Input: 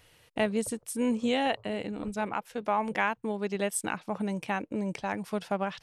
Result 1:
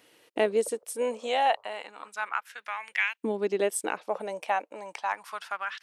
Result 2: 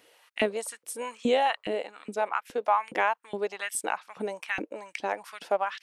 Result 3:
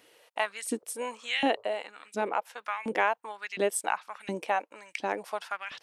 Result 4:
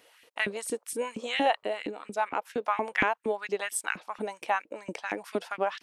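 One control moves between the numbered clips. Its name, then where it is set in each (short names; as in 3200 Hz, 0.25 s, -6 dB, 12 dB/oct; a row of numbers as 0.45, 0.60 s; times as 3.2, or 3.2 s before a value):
LFO high-pass, rate: 0.31, 2.4, 1.4, 4.3 Hz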